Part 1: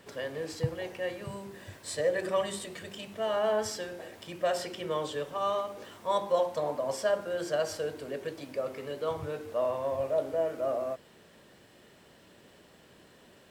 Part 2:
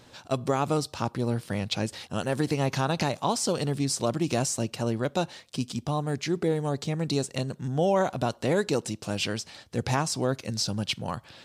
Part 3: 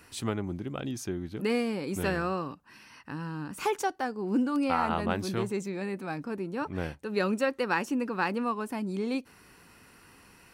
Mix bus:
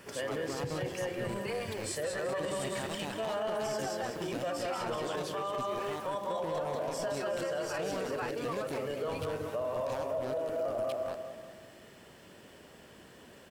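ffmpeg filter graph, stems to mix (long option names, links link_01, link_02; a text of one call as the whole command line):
ffmpeg -i stem1.wav -i stem2.wav -i stem3.wav -filter_complex "[0:a]volume=2.5dB,asplit=2[link_01][link_02];[link_02]volume=-8dB[link_03];[1:a]acrossover=split=4100[link_04][link_05];[link_05]acompressor=threshold=-38dB:ratio=4:attack=1:release=60[link_06];[link_04][link_06]amix=inputs=2:normalize=0,highpass=54,acrusher=bits=3:mix=0:aa=0.5,volume=-14dB[link_07];[2:a]highpass=frequency=350:width=0.5412,highpass=frequency=350:width=1.3066,asplit=2[link_08][link_09];[link_09]adelay=8.2,afreqshift=1.4[link_10];[link_08][link_10]amix=inputs=2:normalize=1,volume=0dB[link_11];[link_01][link_11]amix=inputs=2:normalize=0,bandreject=frequency=3900:width=6.2,acompressor=threshold=-31dB:ratio=6,volume=0dB[link_12];[link_03]aecho=0:1:190|380|570|760|950|1140|1330:1|0.47|0.221|0.104|0.0488|0.0229|0.0108[link_13];[link_07][link_12][link_13]amix=inputs=3:normalize=0,alimiter=level_in=2.5dB:limit=-24dB:level=0:latency=1:release=15,volume=-2.5dB" out.wav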